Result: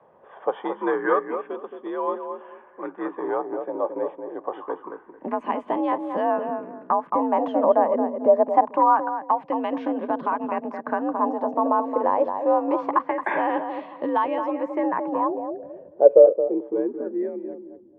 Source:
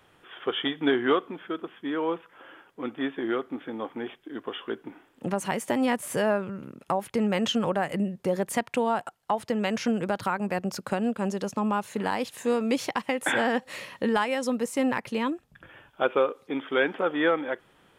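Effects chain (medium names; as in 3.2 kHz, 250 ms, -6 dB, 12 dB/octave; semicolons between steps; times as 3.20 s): band-stop 1.3 kHz, Q 5.1; filtered feedback delay 221 ms, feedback 25%, low-pass 1.3 kHz, level -6 dB; low-pass sweep 1 kHz -> 240 Hz, 14.63–17.30 s; frequency shift +55 Hz; sweeping bell 0.25 Hz 540–3600 Hz +11 dB; trim -1.5 dB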